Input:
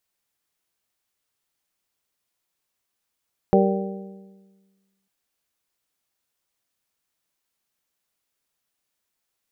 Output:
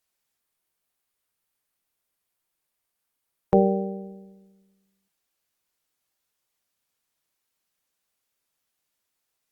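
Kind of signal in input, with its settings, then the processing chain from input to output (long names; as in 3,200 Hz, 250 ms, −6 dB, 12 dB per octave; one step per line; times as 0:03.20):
struck metal bell, lowest mode 194 Hz, modes 5, decay 1.49 s, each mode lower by 1 dB, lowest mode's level −16 dB
mains-hum notches 60/120/180/240/300/360 Hz
Opus 48 kbit/s 48,000 Hz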